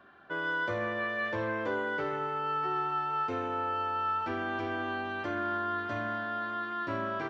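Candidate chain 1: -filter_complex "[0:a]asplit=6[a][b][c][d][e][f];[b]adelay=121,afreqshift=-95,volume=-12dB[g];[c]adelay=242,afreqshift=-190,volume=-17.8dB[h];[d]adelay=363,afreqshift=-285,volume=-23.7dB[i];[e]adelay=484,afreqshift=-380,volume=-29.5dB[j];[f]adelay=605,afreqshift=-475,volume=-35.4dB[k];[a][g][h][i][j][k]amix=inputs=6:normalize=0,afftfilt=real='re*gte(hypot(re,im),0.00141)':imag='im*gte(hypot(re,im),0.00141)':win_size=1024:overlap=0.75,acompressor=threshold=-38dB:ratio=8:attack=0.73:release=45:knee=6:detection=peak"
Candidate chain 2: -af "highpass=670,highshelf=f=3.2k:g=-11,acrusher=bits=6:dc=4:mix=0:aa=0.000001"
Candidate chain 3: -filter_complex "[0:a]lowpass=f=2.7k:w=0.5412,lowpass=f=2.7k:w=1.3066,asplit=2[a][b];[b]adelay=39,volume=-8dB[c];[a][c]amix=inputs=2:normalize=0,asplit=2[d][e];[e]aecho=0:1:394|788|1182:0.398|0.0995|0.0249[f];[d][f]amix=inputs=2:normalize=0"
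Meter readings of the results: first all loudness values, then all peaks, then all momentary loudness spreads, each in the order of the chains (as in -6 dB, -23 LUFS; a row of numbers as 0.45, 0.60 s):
-41.5, -37.0, -32.0 LUFS; -33.0, -24.0, -19.5 dBFS; 2, 8, 3 LU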